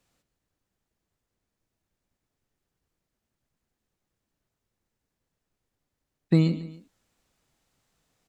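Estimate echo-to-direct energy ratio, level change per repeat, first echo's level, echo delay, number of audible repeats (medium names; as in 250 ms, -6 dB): -14.5 dB, -7.0 dB, -15.5 dB, 142 ms, 2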